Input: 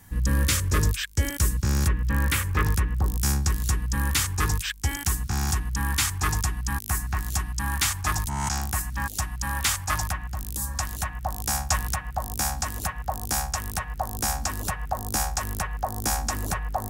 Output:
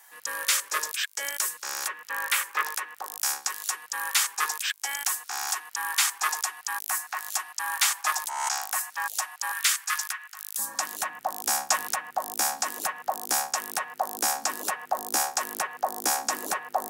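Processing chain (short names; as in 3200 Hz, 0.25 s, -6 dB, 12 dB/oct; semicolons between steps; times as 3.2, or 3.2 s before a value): HPF 630 Hz 24 dB/oct, from 9.52 s 1300 Hz, from 10.59 s 310 Hz; gain +1.5 dB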